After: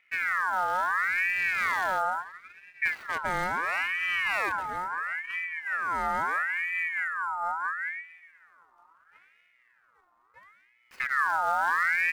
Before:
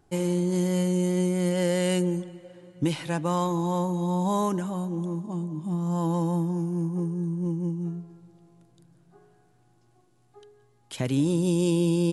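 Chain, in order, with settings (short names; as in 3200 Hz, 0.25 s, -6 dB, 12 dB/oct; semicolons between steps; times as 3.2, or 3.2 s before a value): median filter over 25 samples; high shelf 9000 Hz +4.5 dB; ring modulator with a swept carrier 1600 Hz, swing 35%, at 0.74 Hz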